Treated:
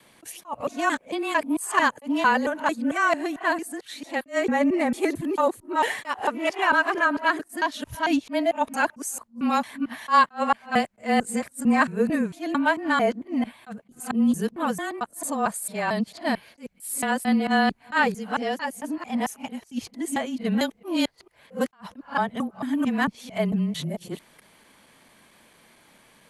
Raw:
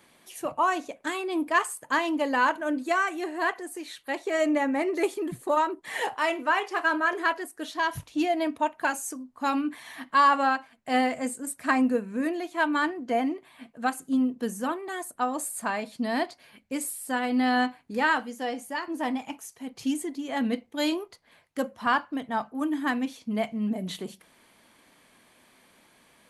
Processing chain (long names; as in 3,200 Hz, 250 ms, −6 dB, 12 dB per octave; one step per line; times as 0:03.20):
reversed piece by piece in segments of 224 ms
frequency shifter −23 Hz
level that may rise only so fast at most 320 dB per second
level +3.5 dB